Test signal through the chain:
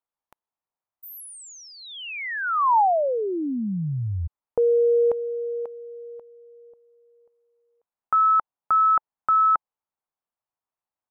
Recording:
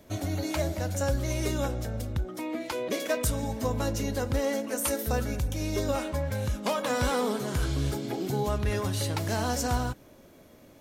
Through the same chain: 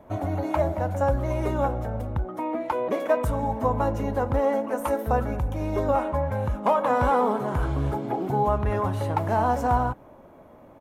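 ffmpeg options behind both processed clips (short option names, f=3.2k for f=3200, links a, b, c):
-af "firequalizer=gain_entry='entry(380,0);entry(880,10);entry(1600,-2);entry(4600,-19);entry(11000,-14)':delay=0.05:min_phase=1,volume=2.5dB"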